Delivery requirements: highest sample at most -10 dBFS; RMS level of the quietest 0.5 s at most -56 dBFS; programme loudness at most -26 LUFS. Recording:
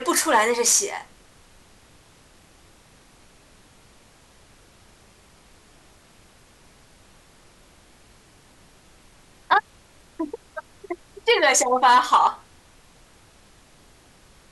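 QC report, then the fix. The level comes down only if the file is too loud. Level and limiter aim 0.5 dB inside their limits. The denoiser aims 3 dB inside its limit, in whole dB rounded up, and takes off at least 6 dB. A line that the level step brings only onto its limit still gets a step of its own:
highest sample -6.0 dBFS: fail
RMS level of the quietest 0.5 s -53 dBFS: fail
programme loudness -19.5 LUFS: fail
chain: gain -7 dB

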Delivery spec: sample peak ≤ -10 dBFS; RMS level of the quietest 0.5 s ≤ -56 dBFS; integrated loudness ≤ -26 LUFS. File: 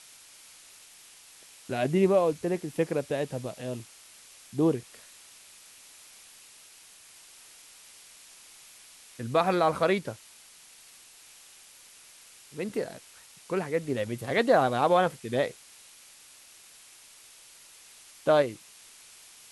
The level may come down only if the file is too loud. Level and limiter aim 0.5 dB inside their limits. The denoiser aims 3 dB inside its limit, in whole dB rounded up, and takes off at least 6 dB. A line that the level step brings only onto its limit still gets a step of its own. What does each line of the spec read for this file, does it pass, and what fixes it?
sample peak -10.5 dBFS: OK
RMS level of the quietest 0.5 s -53 dBFS: fail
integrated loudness -28.0 LUFS: OK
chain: denoiser 6 dB, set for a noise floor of -53 dBFS

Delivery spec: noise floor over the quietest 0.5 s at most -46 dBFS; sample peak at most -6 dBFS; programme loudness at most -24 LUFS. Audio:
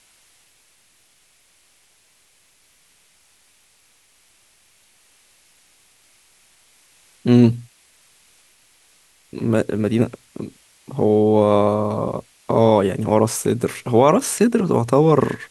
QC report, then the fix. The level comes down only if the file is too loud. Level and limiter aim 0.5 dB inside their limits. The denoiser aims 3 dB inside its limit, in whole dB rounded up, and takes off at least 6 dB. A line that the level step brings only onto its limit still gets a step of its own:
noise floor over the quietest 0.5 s -58 dBFS: OK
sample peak -2.0 dBFS: fail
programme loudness -18.0 LUFS: fail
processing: gain -6.5 dB

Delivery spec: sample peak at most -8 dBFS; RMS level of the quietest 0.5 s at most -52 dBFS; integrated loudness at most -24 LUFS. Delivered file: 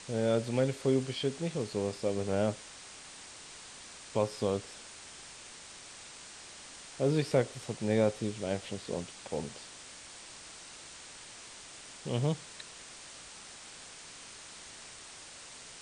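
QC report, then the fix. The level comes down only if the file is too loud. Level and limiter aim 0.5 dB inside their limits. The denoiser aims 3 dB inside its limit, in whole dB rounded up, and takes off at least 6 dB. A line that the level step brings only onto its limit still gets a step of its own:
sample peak -14.5 dBFS: OK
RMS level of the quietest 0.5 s -50 dBFS: fail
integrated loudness -33.0 LUFS: OK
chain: denoiser 6 dB, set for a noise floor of -50 dBFS

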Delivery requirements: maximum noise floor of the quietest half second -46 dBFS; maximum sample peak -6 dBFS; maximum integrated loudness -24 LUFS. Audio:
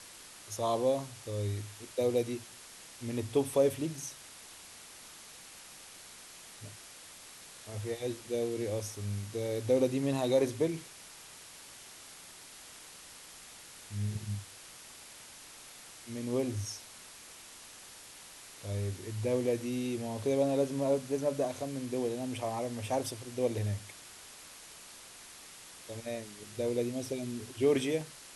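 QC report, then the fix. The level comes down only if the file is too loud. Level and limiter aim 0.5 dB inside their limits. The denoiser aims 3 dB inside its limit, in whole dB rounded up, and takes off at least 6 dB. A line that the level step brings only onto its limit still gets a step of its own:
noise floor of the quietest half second -51 dBFS: OK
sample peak -15.5 dBFS: OK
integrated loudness -33.5 LUFS: OK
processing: none

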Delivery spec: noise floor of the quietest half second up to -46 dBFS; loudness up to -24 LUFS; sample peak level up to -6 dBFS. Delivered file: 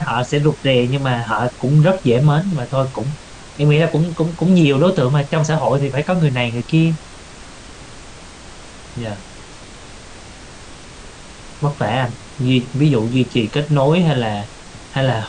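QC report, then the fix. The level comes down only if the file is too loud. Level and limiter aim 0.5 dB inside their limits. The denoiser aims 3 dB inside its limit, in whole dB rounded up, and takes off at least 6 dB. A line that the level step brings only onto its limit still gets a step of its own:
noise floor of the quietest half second -37 dBFS: fail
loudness -17.0 LUFS: fail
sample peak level -3.5 dBFS: fail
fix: denoiser 6 dB, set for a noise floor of -37 dBFS; gain -7.5 dB

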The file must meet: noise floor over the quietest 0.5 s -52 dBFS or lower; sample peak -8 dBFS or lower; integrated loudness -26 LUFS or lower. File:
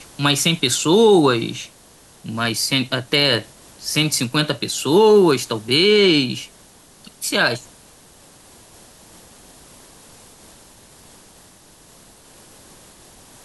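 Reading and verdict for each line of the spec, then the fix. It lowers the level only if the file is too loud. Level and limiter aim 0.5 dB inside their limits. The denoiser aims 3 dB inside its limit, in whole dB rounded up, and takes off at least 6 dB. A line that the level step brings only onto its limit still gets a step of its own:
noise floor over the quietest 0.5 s -48 dBFS: fail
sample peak -4.5 dBFS: fail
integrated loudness -17.0 LUFS: fail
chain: gain -9.5 dB

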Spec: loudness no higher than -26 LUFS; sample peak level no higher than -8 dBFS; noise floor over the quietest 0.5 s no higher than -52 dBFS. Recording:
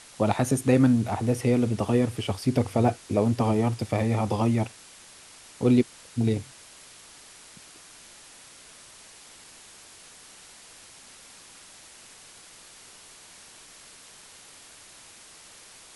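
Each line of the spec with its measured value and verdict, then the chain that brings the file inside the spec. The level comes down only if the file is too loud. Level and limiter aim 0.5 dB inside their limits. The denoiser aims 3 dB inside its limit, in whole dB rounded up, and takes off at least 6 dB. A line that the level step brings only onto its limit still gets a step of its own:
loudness -25.0 LUFS: fail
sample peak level -8.5 dBFS: OK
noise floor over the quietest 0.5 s -50 dBFS: fail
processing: denoiser 6 dB, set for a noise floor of -50 dBFS; gain -1.5 dB

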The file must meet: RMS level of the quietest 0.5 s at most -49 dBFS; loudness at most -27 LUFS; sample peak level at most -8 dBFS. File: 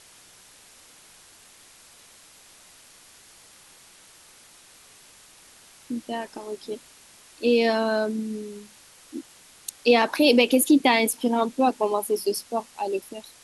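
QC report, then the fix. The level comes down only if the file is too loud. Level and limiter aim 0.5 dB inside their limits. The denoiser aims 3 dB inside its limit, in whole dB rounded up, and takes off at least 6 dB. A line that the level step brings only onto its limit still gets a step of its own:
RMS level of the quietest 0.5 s -52 dBFS: OK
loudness -23.0 LUFS: fail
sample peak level -5.0 dBFS: fail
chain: gain -4.5 dB

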